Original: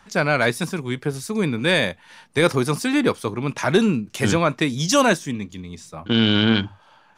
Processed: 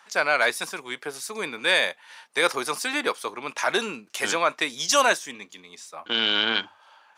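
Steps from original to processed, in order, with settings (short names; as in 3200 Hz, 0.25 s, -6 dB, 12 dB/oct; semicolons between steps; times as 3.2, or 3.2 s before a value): HPF 650 Hz 12 dB/oct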